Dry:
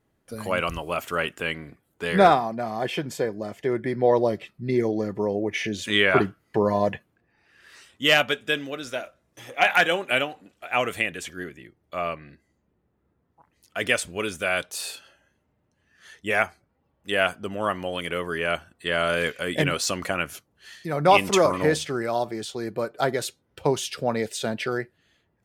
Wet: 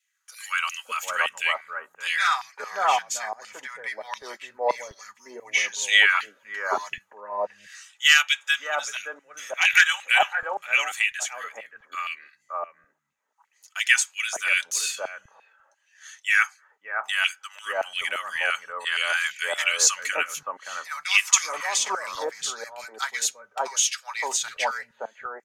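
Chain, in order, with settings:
parametric band 6,600 Hz +14.5 dB 0.39 octaves
notch comb filter 350 Hz
auto-filter high-pass saw down 2.9 Hz 800–2,700 Hz
three-band delay without the direct sound highs, mids, lows 570/770 ms, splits 170/1,200 Hz
level +1.5 dB

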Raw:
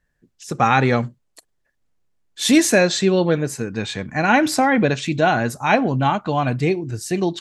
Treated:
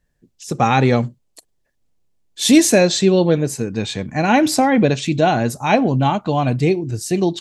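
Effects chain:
parametric band 1,500 Hz −8 dB 1.2 octaves
level +3.5 dB

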